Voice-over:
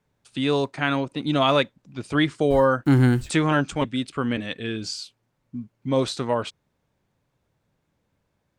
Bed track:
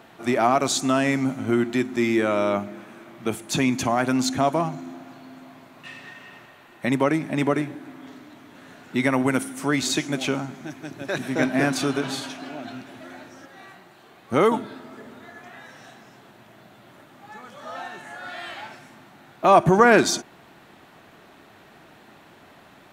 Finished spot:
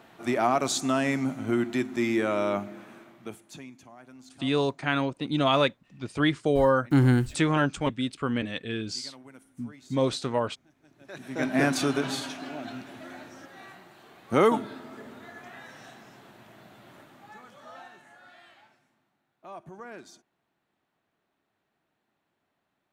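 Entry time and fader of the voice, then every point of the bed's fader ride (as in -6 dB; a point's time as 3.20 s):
4.05 s, -3.0 dB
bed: 2.96 s -4.5 dB
3.82 s -28 dB
10.74 s -28 dB
11.57 s -2 dB
16.98 s -2 dB
19.28 s -28.5 dB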